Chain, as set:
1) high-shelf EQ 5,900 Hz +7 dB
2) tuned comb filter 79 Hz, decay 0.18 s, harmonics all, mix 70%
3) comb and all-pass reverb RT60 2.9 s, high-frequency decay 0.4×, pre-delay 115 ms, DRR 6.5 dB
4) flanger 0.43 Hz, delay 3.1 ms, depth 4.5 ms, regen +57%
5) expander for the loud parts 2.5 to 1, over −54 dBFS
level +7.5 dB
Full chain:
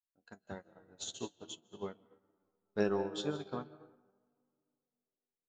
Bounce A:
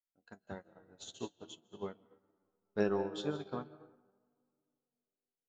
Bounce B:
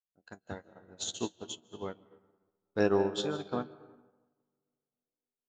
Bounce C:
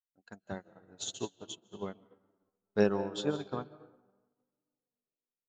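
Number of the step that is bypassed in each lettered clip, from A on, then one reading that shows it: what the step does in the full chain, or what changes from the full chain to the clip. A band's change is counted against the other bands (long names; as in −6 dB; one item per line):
1, change in momentary loudness spread −5 LU
4, change in momentary loudness spread −5 LU
2, change in crest factor +1.5 dB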